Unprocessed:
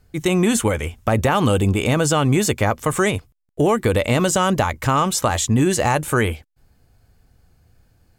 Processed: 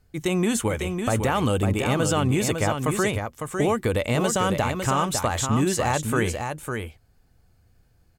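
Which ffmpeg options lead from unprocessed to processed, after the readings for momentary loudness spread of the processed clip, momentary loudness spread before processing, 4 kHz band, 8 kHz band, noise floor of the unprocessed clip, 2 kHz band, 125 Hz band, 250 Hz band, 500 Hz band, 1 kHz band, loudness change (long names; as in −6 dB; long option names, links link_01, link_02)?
8 LU, 4 LU, −4.5 dB, −4.5 dB, −61 dBFS, −4.5 dB, −4.5 dB, −4.5 dB, −4.5 dB, −4.5 dB, −5.0 dB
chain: -af "aecho=1:1:553:0.501,volume=-5.5dB"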